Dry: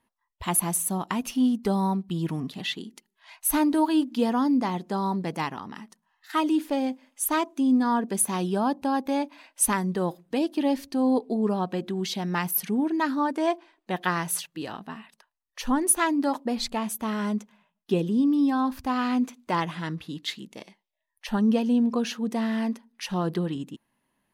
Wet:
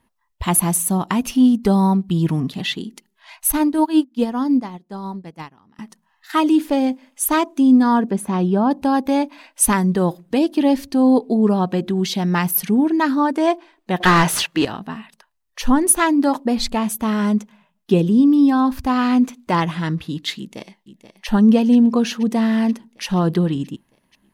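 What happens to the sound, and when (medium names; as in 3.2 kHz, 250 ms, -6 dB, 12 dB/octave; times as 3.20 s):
3.52–5.79 s: upward expansion 2.5:1, over -35 dBFS
8.10–8.71 s: low-pass 1.4 kHz 6 dB/octave
14.00–14.65 s: overdrive pedal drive 23 dB, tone 2.7 kHz, clips at -11.5 dBFS
20.38–21.27 s: echo throw 480 ms, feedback 75%, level -12 dB
whole clip: bass shelf 160 Hz +9 dB; trim +6.5 dB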